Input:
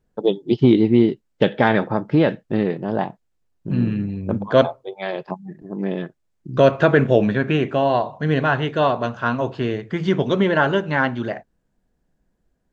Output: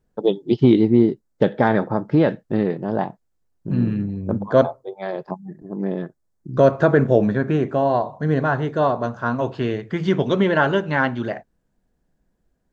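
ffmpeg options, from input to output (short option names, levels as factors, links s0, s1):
-af "asetnsamples=n=441:p=0,asendcmd='0.85 equalizer g -12.5;2.02 equalizer g -6.5;4.03 equalizer g -13.5;9.39 equalizer g -1.5',equalizer=f=2800:t=o:w=0.96:g=-2.5"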